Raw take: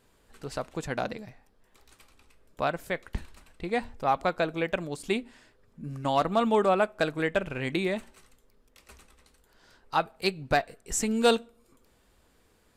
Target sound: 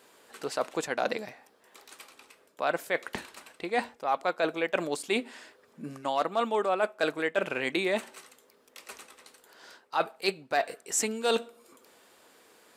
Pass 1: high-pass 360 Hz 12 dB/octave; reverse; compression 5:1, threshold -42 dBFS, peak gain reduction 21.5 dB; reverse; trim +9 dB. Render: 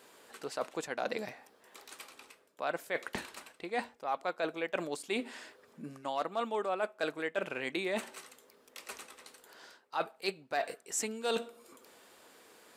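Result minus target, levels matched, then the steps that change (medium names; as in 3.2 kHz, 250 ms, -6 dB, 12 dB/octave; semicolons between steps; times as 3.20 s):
compression: peak gain reduction +6.5 dB
change: compression 5:1, threshold -34 dBFS, peak gain reduction 15 dB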